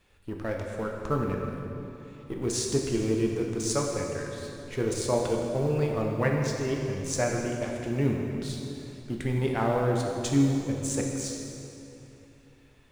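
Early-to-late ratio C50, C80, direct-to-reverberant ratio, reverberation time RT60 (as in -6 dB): 2.0 dB, 3.0 dB, 0.0 dB, 3.0 s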